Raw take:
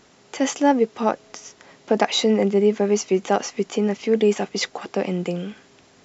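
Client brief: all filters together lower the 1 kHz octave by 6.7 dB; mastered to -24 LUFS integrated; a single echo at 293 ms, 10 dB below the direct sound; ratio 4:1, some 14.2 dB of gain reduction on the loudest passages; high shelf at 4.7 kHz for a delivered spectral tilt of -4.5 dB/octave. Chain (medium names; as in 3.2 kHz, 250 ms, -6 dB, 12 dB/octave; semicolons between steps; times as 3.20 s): peaking EQ 1 kHz -9 dB; treble shelf 4.7 kHz -4.5 dB; compression 4:1, threshold -32 dBFS; delay 293 ms -10 dB; trim +11 dB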